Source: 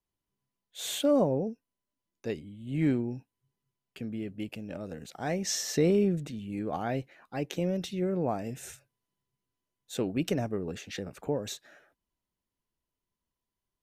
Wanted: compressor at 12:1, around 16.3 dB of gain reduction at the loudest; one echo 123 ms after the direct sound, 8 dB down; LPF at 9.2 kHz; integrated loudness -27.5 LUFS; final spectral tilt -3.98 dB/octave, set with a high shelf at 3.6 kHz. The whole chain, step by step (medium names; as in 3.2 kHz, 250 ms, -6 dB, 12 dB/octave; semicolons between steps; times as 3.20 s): low-pass 9.2 kHz; treble shelf 3.6 kHz +7.5 dB; compression 12:1, threshold -37 dBFS; delay 123 ms -8 dB; trim +14 dB